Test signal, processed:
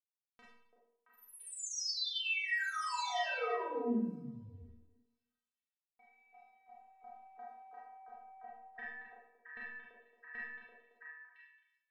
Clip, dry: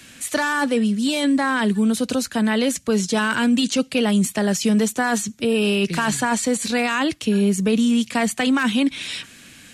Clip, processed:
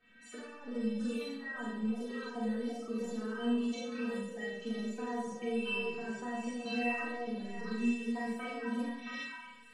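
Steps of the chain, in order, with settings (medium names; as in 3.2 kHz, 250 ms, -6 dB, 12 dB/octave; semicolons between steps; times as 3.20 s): coarse spectral quantiser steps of 30 dB; small samples zeroed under -47.5 dBFS; treble shelf 4.6 kHz -11.5 dB; peak limiter -17 dBFS; transient shaper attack +7 dB, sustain -9 dB; compression 4:1, threshold -27 dBFS; inharmonic resonator 230 Hz, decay 0.43 s, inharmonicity 0.008; level-controlled noise filter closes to 2 kHz, open at -36.5 dBFS; repeats whose band climbs or falls 336 ms, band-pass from 480 Hz, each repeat 1.4 oct, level 0 dB; Schroeder reverb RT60 0.68 s, combs from 29 ms, DRR -5 dB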